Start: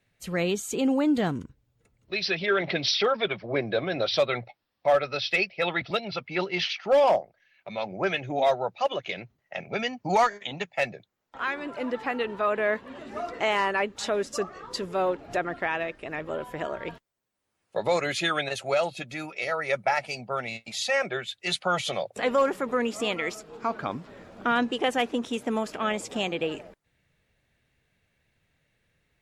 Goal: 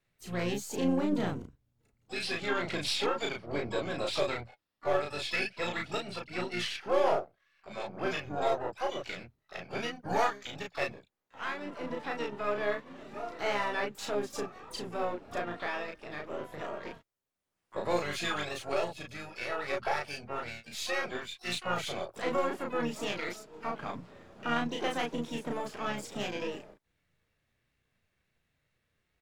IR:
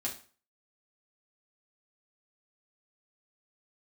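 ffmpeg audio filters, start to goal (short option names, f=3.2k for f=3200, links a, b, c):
-filter_complex "[0:a]aeval=exprs='if(lt(val(0),0),0.708*val(0),val(0))':c=same,asplit=2[a][b];[b]adelay=34,volume=-2.5dB[c];[a][c]amix=inputs=2:normalize=0,asplit=4[d][e][f][g];[e]asetrate=29433,aresample=44100,atempo=1.49831,volume=-8dB[h];[f]asetrate=58866,aresample=44100,atempo=0.749154,volume=-17dB[i];[g]asetrate=88200,aresample=44100,atempo=0.5,volume=-13dB[j];[d][h][i][j]amix=inputs=4:normalize=0,volume=-8dB"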